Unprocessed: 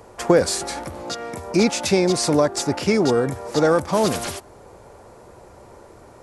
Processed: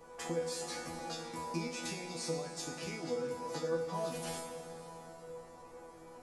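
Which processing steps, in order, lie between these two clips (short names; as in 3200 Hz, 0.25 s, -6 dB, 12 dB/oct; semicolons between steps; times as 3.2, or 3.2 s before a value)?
compressor, threshold -28 dBFS, peak gain reduction 16 dB; resonator bank E3 fifth, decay 0.41 s; plate-style reverb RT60 3.8 s, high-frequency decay 0.8×, DRR 5.5 dB; gain +7.5 dB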